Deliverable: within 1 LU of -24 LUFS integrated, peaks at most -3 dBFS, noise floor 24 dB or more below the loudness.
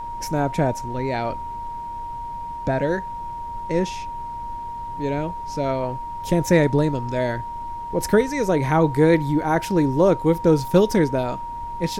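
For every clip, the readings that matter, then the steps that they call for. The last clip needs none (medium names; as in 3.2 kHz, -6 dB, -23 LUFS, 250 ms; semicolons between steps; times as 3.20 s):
steady tone 940 Hz; tone level -29 dBFS; noise floor -32 dBFS; noise floor target -47 dBFS; loudness -22.5 LUFS; peak level -3.5 dBFS; loudness target -24.0 LUFS
-> band-stop 940 Hz, Q 30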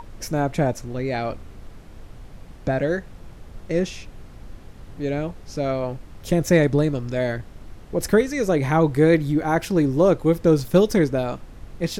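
steady tone not found; noise floor -43 dBFS; noise floor target -46 dBFS
-> noise print and reduce 6 dB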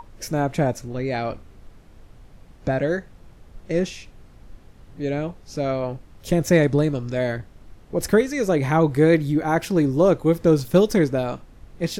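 noise floor -49 dBFS; loudness -22.0 LUFS; peak level -4.0 dBFS; loudness target -24.0 LUFS
-> trim -2 dB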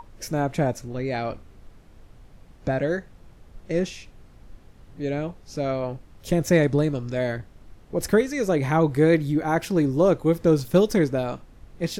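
loudness -24.0 LUFS; peak level -6.0 dBFS; noise floor -51 dBFS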